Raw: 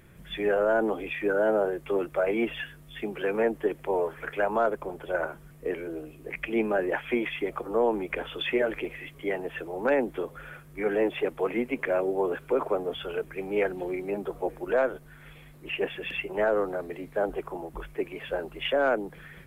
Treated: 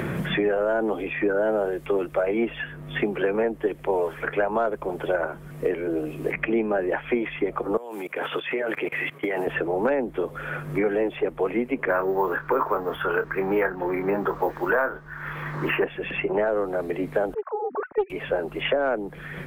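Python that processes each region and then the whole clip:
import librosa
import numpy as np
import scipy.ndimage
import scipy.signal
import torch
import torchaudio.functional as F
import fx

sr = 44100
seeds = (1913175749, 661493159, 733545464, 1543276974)

y = fx.chain(x, sr, fx.highpass(hz=120.0, slope=24),
    fx.tilt_eq(slope=3.5),
    fx.level_steps(step_db=21), at=(7.77, 9.47))
y = fx.chain(y, sr, fx.resample_bad(factor=3, down='none', up='hold'),
    fx.band_shelf(hz=1300.0, db=11.5, octaves=1.3),
    fx.doubler(ms=26.0, db=-9.0), at=(11.88, 15.84))
y = fx.chain(y, sr, fx.sine_speech(),
    fx.lowpass(hz=1500.0, slope=24),
    fx.doppler_dist(depth_ms=0.27), at=(17.34, 18.1))
y = fx.high_shelf(y, sr, hz=3100.0, db=-10.5)
y = fx.band_squash(y, sr, depth_pct=100)
y = F.gain(torch.from_numpy(y), 2.5).numpy()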